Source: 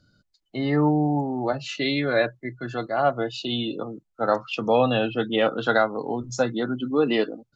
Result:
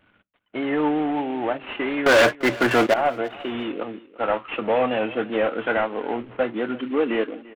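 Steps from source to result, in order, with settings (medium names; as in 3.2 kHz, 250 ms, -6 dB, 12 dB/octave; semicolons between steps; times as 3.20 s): CVSD coder 16 kbps; on a send at -22.5 dB: reverberation RT60 0.25 s, pre-delay 6 ms; 2.06–2.94 s: on the sum: waveshaping leveller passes 5; in parallel at -2 dB: compression, threshold -29 dBFS, peak gain reduction 13.5 dB; on the sum: bass shelf 110 Hz -11 dB; feedback delay 344 ms, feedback 24%, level -20 dB; vibrato 5.3 Hz 37 cents; peaking EQ 140 Hz -14 dB 0.52 oct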